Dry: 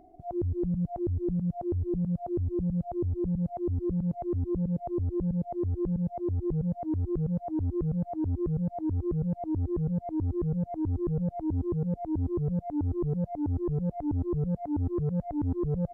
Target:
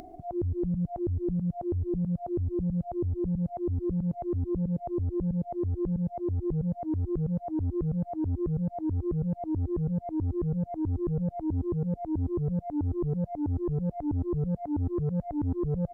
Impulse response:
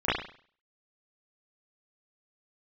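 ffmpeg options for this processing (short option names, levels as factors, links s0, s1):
-af "acompressor=mode=upward:threshold=0.0141:ratio=2.5"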